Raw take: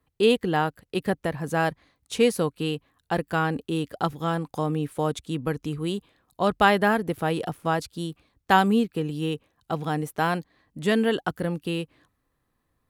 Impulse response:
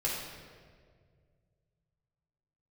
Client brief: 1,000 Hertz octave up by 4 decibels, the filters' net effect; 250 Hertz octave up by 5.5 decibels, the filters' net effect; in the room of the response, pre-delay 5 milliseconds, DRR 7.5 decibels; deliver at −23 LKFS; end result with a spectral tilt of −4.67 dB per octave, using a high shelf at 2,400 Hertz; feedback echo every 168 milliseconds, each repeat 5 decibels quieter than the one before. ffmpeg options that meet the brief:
-filter_complex "[0:a]equalizer=frequency=250:width_type=o:gain=7,equalizer=frequency=1000:width_type=o:gain=4,highshelf=frequency=2400:gain=5,aecho=1:1:168|336|504|672|840|1008|1176:0.562|0.315|0.176|0.0988|0.0553|0.031|0.0173,asplit=2[link_01][link_02];[1:a]atrim=start_sample=2205,adelay=5[link_03];[link_02][link_03]afir=irnorm=-1:irlink=0,volume=-14dB[link_04];[link_01][link_04]amix=inputs=2:normalize=0,volume=-3dB"

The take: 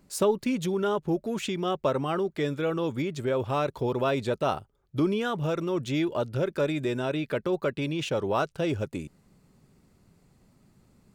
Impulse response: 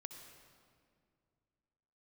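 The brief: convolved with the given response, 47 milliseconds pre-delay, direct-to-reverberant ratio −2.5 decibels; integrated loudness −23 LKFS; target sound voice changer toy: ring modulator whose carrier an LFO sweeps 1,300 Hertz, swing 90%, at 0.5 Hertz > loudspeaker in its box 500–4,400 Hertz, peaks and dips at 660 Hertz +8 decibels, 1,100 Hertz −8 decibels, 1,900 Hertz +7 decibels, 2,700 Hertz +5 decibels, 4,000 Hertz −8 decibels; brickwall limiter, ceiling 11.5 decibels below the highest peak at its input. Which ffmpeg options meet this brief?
-filter_complex "[0:a]alimiter=limit=-23.5dB:level=0:latency=1,asplit=2[link_01][link_02];[1:a]atrim=start_sample=2205,adelay=47[link_03];[link_02][link_03]afir=irnorm=-1:irlink=0,volume=7dB[link_04];[link_01][link_04]amix=inputs=2:normalize=0,aeval=exprs='val(0)*sin(2*PI*1300*n/s+1300*0.9/0.5*sin(2*PI*0.5*n/s))':channel_layout=same,highpass=500,equalizer=frequency=660:width_type=q:width=4:gain=8,equalizer=frequency=1100:width_type=q:width=4:gain=-8,equalizer=frequency=1900:width_type=q:width=4:gain=7,equalizer=frequency=2700:width_type=q:width=4:gain=5,equalizer=frequency=4000:width_type=q:width=4:gain=-8,lowpass=frequency=4400:width=0.5412,lowpass=frequency=4400:width=1.3066,volume=3dB"

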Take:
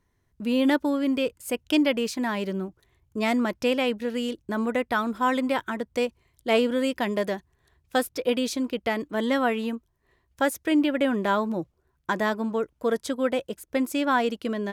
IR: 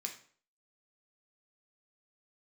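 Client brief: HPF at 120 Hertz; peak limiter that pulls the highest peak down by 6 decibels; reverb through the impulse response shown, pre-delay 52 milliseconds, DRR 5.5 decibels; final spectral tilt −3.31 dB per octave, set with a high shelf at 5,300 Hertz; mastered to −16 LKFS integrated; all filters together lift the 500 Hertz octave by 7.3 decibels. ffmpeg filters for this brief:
-filter_complex "[0:a]highpass=120,equalizer=frequency=500:width_type=o:gain=8,highshelf=frequency=5300:gain=6,alimiter=limit=-12dB:level=0:latency=1,asplit=2[link_01][link_02];[1:a]atrim=start_sample=2205,adelay=52[link_03];[link_02][link_03]afir=irnorm=-1:irlink=0,volume=-4.5dB[link_04];[link_01][link_04]amix=inputs=2:normalize=0,volume=7dB"

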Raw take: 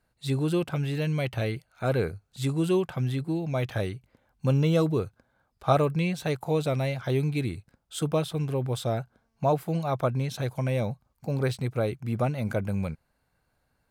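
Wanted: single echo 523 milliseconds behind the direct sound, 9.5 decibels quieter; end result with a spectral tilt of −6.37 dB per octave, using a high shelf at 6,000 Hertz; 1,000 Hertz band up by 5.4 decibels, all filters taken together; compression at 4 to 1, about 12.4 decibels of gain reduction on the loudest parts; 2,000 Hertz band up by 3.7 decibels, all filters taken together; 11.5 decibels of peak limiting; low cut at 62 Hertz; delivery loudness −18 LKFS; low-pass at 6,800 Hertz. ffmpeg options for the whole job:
ffmpeg -i in.wav -af "highpass=62,lowpass=6800,equalizer=frequency=1000:width_type=o:gain=7,equalizer=frequency=2000:width_type=o:gain=3.5,highshelf=frequency=6000:gain=-7.5,acompressor=threshold=-28dB:ratio=4,alimiter=limit=-23.5dB:level=0:latency=1,aecho=1:1:523:0.335,volume=16dB" out.wav

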